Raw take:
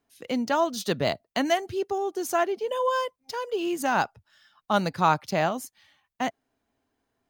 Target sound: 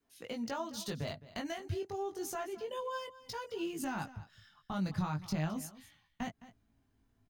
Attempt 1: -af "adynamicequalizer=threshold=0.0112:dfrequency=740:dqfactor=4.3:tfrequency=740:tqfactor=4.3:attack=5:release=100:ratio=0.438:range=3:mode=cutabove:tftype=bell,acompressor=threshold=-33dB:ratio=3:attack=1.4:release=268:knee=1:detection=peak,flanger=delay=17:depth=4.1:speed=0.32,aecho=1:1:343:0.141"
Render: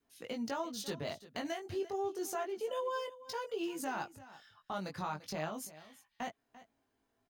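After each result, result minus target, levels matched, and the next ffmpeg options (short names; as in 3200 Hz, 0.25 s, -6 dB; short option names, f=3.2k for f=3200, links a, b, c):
echo 0.13 s late; 250 Hz band -3.0 dB
-af "adynamicequalizer=threshold=0.0112:dfrequency=740:dqfactor=4.3:tfrequency=740:tqfactor=4.3:attack=5:release=100:ratio=0.438:range=3:mode=cutabove:tftype=bell,acompressor=threshold=-33dB:ratio=3:attack=1.4:release=268:knee=1:detection=peak,flanger=delay=17:depth=4.1:speed=0.32,aecho=1:1:213:0.141"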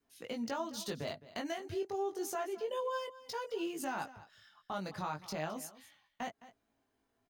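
250 Hz band -3.0 dB
-af "adynamicequalizer=threshold=0.0112:dfrequency=740:dqfactor=4.3:tfrequency=740:tqfactor=4.3:attack=5:release=100:ratio=0.438:range=3:mode=cutabove:tftype=bell,acompressor=threshold=-33dB:ratio=3:attack=1.4:release=268:knee=1:detection=peak,asubboost=boost=7.5:cutoff=180,flanger=delay=17:depth=4.1:speed=0.32,aecho=1:1:213:0.141"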